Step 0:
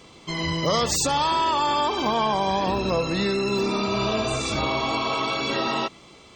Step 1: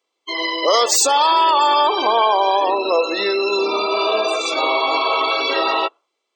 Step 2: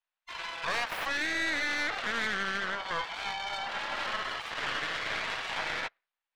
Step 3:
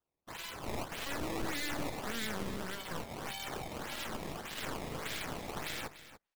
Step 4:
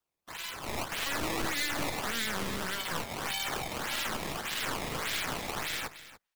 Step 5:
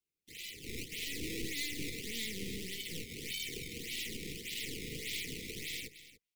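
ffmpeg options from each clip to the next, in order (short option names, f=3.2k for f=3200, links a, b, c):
-af "highpass=f=370:w=0.5412,highpass=f=370:w=1.3066,afftdn=nr=34:nf=-31,highshelf=f=11k:g=6.5,volume=8dB"
-filter_complex "[0:a]aeval=exprs='abs(val(0))':c=same,acrossover=split=590 3600:gain=0.0708 1 0.0891[a][b][c];[a][b][c]amix=inputs=3:normalize=0,aeval=exprs='(tanh(10*val(0)+0.8)-tanh(0.8))/10':c=same,volume=-3.5dB"
-filter_complex "[0:a]acrossover=split=410|3000[a][b][c];[b]acompressor=threshold=-59dB:ratio=2[d];[a][d][c]amix=inputs=3:normalize=0,acrusher=samples=17:mix=1:aa=0.000001:lfo=1:lforange=27.2:lforate=1.7,aecho=1:1:292:0.2,volume=1dB"
-filter_complex "[0:a]acrossover=split=110|970[a][b][c];[c]acontrast=70[d];[a][b][d]amix=inputs=3:normalize=0,alimiter=limit=-23.5dB:level=0:latency=1:release=11,dynaudnorm=f=160:g=9:m=5.5dB,volume=-2.5dB"
-af "asuperstop=centerf=980:order=20:qfactor=0.66,volume=-5dB"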